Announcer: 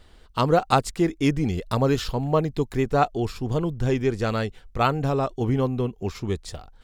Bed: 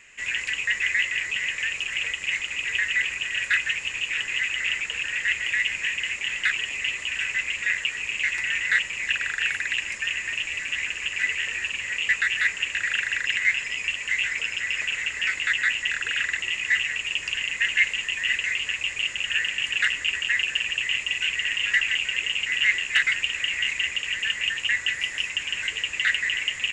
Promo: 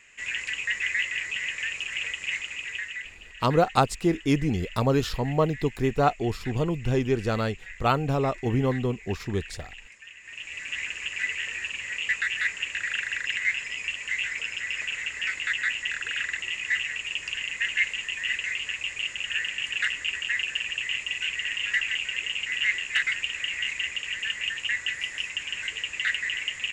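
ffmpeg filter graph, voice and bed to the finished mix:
-filter_complex "[0:a]adelay=3050,volume=-1.5dB[a];[1:a]volume=11.5dB,afade=t=out:st=2.33:d=0.84:silence=0.16788,afade=t=in:st=10.2:d=0.57:silence=0.177828[b];[a][b]amix=inputs=2:normalize=0"

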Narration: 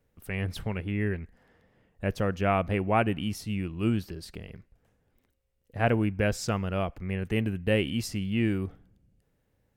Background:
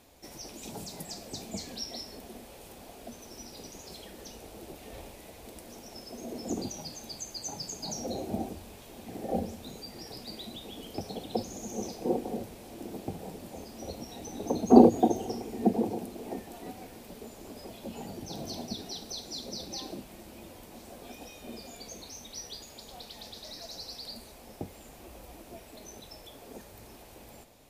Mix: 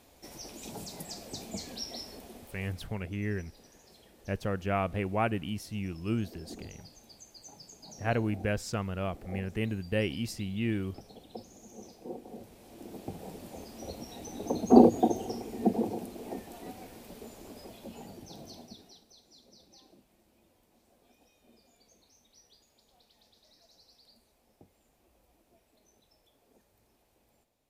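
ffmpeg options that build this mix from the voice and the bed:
-filter_complex "[0:a]adelay=2250,volume=-4.5dB[a];[1:a]volume=10dB,afade=t=out:st=2.1:d=0.88:silence=0.266073,afade=t=in:st=12.23:d=1.15:silence=0.281838,afade=t=out:st=17.31:d=1.75:silence=0.125893[b];[a][b]amix=inputs=2:normalize=0"

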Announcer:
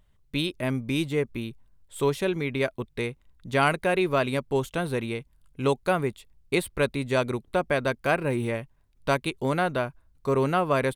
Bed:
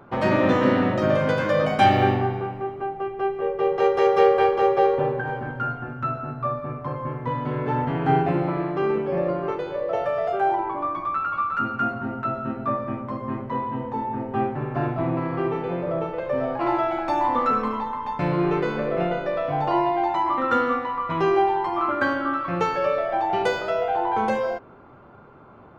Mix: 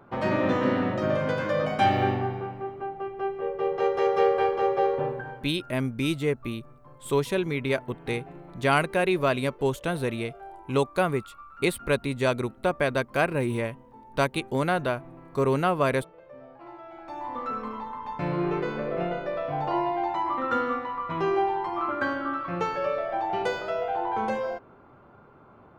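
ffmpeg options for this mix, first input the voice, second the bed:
-filter_complex "[0:a]adelay=5100,volume=0dB[a];[1:a]volume=12dB,afade=t=out:st=5.04:d=0.48:silence=0.141254,afade=t=in:st=16.82:d=1.5:silence=0.141254[b];[a][b]amix=inputs=2:normalize=0"

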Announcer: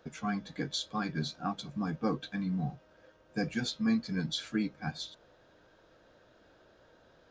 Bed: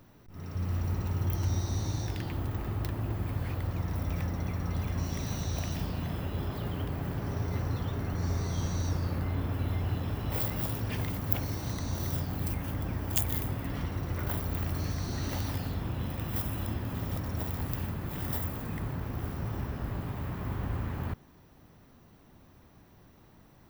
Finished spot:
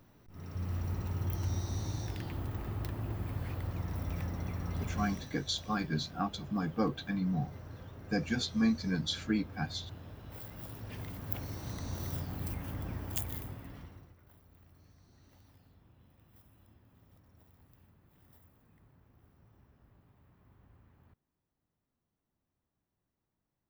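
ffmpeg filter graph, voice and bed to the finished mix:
-filter_complex "[0:a]adelay=4750,volume=0.5dB[a];[1:a]volume=5.5dB,afade=t=out:st=5.01:d=0.29:silence=0.281838,afade=t=in:st=10.43:d=1.45:silence=0.316228,afade=t=out:st=12.95:d=1.21:silence=0.0668344[b];[a][b]amix=inputs=2:normalize=0"

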